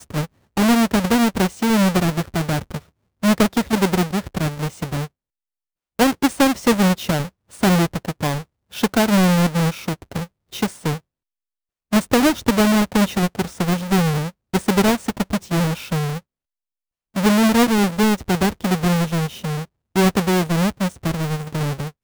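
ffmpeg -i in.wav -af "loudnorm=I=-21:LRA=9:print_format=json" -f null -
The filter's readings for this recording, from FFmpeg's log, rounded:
"input_i" : "-19.8",
"input_tp" : "-6.0",
"input_lra" : "2.8",
"input_thresh" : "-30.1",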